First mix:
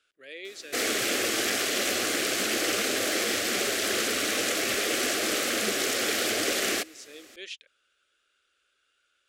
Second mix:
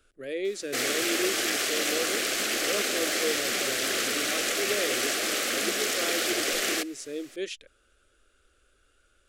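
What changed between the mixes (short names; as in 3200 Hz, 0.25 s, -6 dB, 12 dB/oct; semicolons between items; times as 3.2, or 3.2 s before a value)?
speech: remove band-pass 3100 Hz, Q 0.88; master: add low shelf 390 Hz -6 dB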